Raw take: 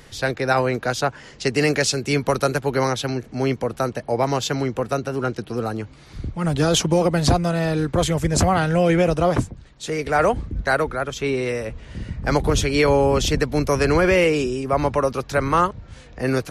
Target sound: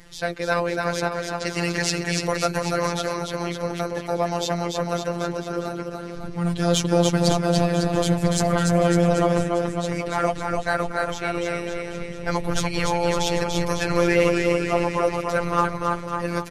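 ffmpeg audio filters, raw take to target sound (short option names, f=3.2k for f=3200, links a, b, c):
-filter_complex "[0:a]flanger=delay=0.4:depth=1.8:regen=70:speed=1.1:shape=triangular,aecho=1:1:290|551|785.9|997.3|1188:0.631|0.398|0.251|0.158|0.1,asplit=2[a][b];[b]asoftclip=type=hard:threshold=-17dB,volume=-5dB[c];[a][c]amix=inputs=2:normalize=0,afftfilt=real='hypot(re,im)*cos(PI*b)':imag='0':win_size=1024:overlap=0.75"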